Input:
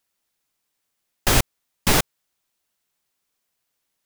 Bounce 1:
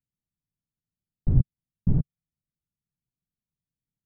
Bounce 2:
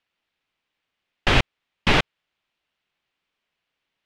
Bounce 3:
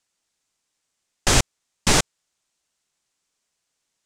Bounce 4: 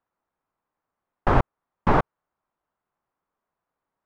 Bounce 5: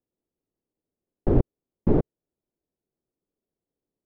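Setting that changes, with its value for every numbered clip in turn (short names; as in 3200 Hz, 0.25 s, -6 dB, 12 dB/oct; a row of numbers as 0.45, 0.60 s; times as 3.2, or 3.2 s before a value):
synth low-pass, frequency: 150, 2900, 7500, 1100, 390 Hz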